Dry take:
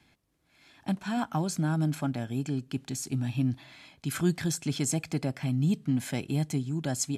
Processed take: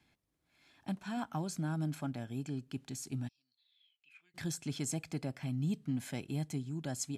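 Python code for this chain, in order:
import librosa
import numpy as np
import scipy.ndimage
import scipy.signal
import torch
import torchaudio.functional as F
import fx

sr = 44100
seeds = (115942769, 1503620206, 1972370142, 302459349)

y = fx.bandpass_q(x, sr, hz=fx.line((3.27, 5400.0), (4.34, 2100.0)), q=19.0, at=(3.27, 4.34), fade=0.02)
y = y * 10.0 ** (-8.0 / 20.0)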